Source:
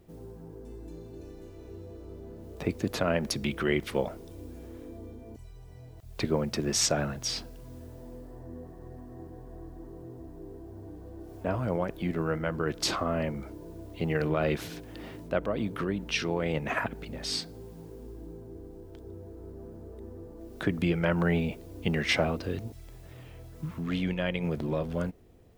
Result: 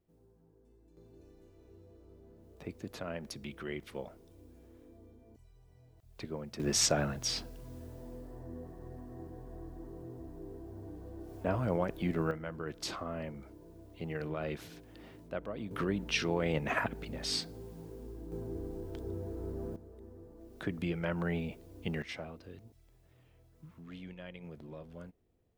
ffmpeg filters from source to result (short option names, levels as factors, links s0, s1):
-af "asetnsamples=n=441:p=0,asendcmd='0.97 volume volume -13dB;6.6 volume volume -2dB;12.31 volume volume -10dB;15.71 volume volume -2dB;18.32 volume volume 4.5dB;19.76 volume volume -8dB;22.02 volume volume -17dB',volume=0.1"